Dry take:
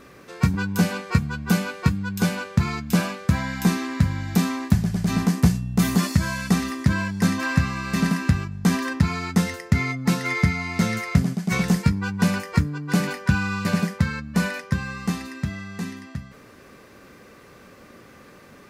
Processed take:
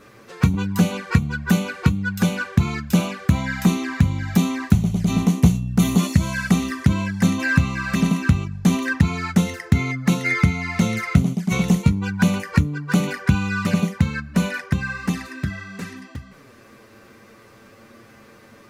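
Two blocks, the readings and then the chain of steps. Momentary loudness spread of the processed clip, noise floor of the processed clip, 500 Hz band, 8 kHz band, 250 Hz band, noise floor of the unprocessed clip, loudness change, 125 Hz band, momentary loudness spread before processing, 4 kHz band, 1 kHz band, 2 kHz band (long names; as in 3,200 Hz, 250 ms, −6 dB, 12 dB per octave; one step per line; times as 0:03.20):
5 LU, −48 dBFS, +1.5 dB, +1.0 dB, +2.5 dB, −48 dBFS, +2.5 dB, +2.5 dB, 6 LU, +0.5 dB, 0.0 dB, +2.0 dB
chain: flanger swept by the level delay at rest 11 ms, full sweep at −19.5 dBFS
dynamic equaliser 1,600 Hz, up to +7 dB, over −49 dBFS, Q 2
level +3 dB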